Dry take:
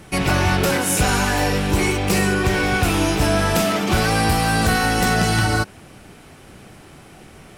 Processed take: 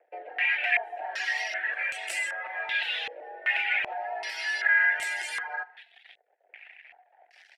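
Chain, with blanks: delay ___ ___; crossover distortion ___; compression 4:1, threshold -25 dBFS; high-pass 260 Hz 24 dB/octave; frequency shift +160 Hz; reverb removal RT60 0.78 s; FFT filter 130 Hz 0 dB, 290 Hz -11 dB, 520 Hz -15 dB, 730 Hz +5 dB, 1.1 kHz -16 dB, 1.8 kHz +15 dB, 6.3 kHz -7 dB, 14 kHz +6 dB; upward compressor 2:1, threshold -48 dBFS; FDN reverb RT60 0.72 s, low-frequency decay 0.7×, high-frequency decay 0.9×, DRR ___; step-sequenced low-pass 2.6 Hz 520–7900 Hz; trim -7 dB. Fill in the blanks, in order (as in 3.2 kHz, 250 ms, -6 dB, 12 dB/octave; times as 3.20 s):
196 ms, -21 dB, -42 dBFS, 13.5 dB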